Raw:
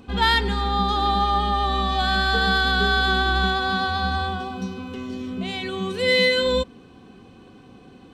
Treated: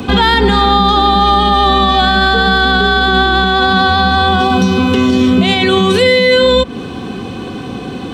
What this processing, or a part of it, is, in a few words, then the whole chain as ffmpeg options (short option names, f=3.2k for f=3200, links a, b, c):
mastering chain: -filter_complex "[0:a]highpass=58,equalizer=f=3.5k:t=o:w=0.21:g=4,acrossover=split=140|500|1400|3000[a][b][c][d][e];[a]acompressor=threshold=-36dB:ratio=4[f];[b]acompressor=threshold=-29dB:ratio=4[g];[c]acompressor=threshold=-29dB:ratio=4[h];[d]acompressor=threshold=-34dB:ratio=4[i];[e]acompressor=threshold=-38dB:ratio=4[j];[f][g][h][i][j]amix=inputs=5:normalize=0,acompressor=threshold=-31dB:ratio=2,alimiter=level_in=24.5dB:limit=-1dB:release=50:level=0:latency=1,volume=-1dB"